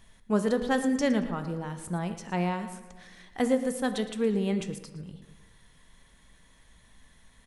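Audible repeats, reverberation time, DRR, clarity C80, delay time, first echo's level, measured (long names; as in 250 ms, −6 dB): 2, 1.3 s, 8.0 dB, 11.0 dB, 114 ms, −15.0 dB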